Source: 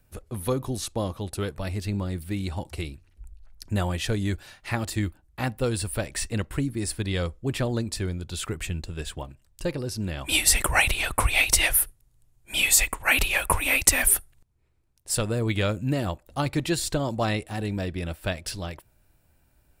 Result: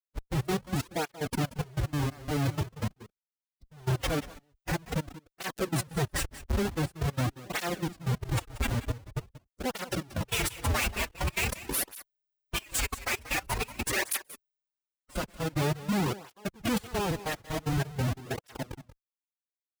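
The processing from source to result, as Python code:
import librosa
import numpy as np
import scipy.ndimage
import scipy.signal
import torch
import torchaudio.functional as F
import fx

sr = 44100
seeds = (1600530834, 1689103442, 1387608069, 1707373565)

p1 = fx.peak_eq(x, sr, hz=4300.0, db=-6.0, octaves=0.64)
p2 = fx.rider(p1, sr, range_db=3, speed_s=0.5)
p3 = p1 + F.gain(torch.from_numpy(p2), 2.0).numpy()
p4 = fx.schmitt(p3, sr, flips_db=-22.5)
p5 = fx.step_gate(p4, sr, bpm=186, pattern='..xxx.x..x.xx', floor_db=-24.0, edge_ms=4.5)
p6 = fx.pitch_keep_formants(p5, sr, semitones=6.5)
p7 = p6 + fx.echo_single(p6, sr, ms=184, db=-15.5, dry=0)
p8 = fx.flanger_cancel(p7, sr, hz=0.46, depth_ms=6.7)
y = F.gain(torch.from_numpy(p8), -3.5).numpy()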